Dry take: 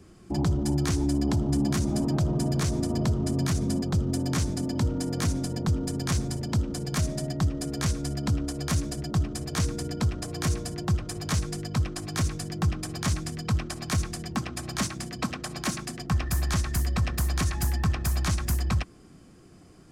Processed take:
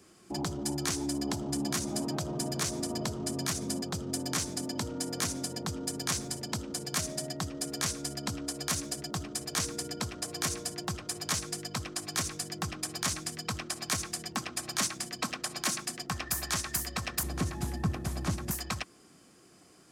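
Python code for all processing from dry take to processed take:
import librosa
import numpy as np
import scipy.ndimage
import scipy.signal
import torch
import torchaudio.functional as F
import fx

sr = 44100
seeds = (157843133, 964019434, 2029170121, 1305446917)

y = fx.chain(x, sr, fx.cvsd(bps=64000),
    fx.highpass(hz=62.0, slope=12),
    fx.tilt_shelf(db=10.0, hz=740.0), at=(17.23, 18.51))
y = fx.highpass(y, sr, hz=450.0, slope=6)
y = fx.high_shelf(y, sr, hz=4200.0, db=6.0)
y = F.gain(torch.from_numpy(y), -1.5).numpy()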